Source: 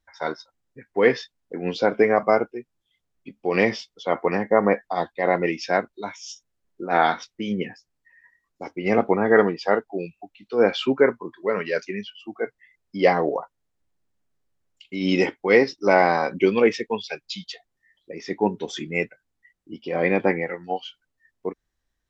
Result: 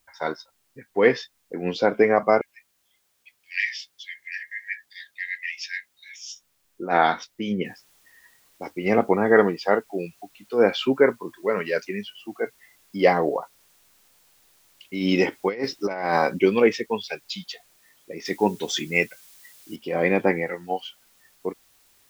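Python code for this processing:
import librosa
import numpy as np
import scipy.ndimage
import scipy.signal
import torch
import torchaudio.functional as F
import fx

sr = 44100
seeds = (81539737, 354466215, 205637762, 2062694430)

y = fx.brickwall_highpass(x, sr, low_hz=1600.0, at=(2.41, 6.24))
y = fx.noise_floor_step(y, sr, seeds[0], at_s=7.65, before_db=-70, after_db=-60, tilt_db=0.0)
y = fx.over_compress(y, sr, threshold_db=-21.0, ratio=-0.5, at=(15.31, 16.37), fade=0.02)
y = fx.high_shelf(y, sr, hz=2200.0, db=10.0, at=(18.25, 19.76))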